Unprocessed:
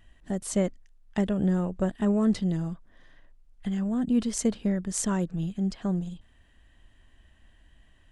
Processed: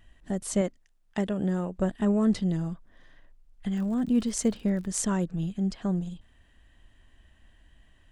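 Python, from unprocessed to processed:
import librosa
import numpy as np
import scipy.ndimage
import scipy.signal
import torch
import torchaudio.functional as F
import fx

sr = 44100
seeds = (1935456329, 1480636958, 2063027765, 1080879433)

y = fx.low_shelf(x, sr, hz=120.0, db=-11.0, at=(0.61, 1.79))
y = fx.dmg_crackle(y, sr, seeds[0], per_s=99.0, level_db=-40.0, at=(3.75, 5.03), fade=0.02)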